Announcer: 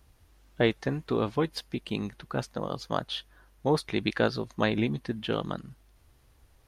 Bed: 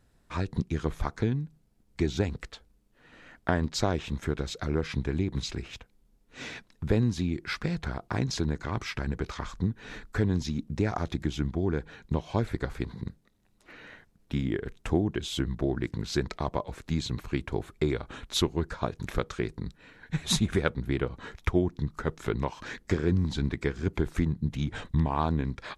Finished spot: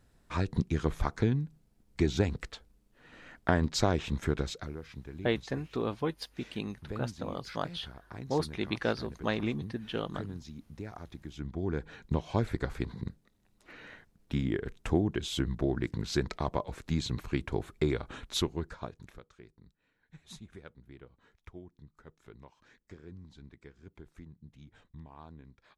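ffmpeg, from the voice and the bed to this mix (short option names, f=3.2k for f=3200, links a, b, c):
-filter_complex "[0:a]adelay=4650,volume=-5dB[a];[1:a]volume=13dB,afade=t=out:st=4.41:d=0.33:silence=0.188365,afade=t=in:st=11.28:d=0.67:silence=0.223872,afade=t=out:st=18.09:d=1.11:silence=0.0841395[b];[a][b]amix=inputs=2:normalize=0"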